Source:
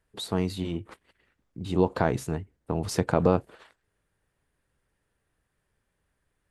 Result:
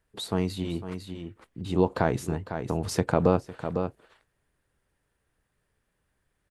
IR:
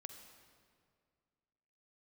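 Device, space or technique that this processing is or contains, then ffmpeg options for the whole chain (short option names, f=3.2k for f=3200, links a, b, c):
ducked delay: -filter_complex "[0:a]asplit=3[a][b][c];[b]adelay=503,volume=-7dB[d];[c]apad=whole_len=308962[e];[d][e]sidechaincompress=threshold=-37dB:ratio=5:attack=31:release=249[f];[a][f]amix=inputs=2:normalize=0"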